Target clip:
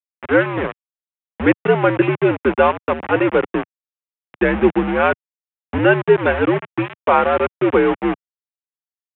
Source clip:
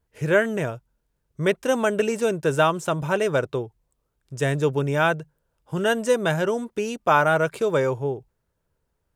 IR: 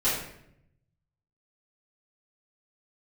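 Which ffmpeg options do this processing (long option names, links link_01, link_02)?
-af "afftfilt=real='re*gte(hypot(re,im),0.0447)':imag='im*gte(hypot(re,im),0.0447)':win_size=1024:overlap=0.75,bandreject=frequency=1400:width=14,dynaudnorm=framelen=210:gausssize=3:maxgain=14dB,aresample=8000,aeval=exprs='val(0)*gte(abs(val(0)),0.15)':channel_layout=same,aresample=44100,highpass=frequency=200:width_type=q:width=0.5412,highpass=frequency=200:width_type=q:width=1.307,lowpass=frequency=2800:width_type=q:width=0.5176,lowpass=frequency=2800:width_type=q:width=0.7071,lowpass=frequency=2800:width_type=q:width=1.932,afreqshift=-83,volume=-1dB"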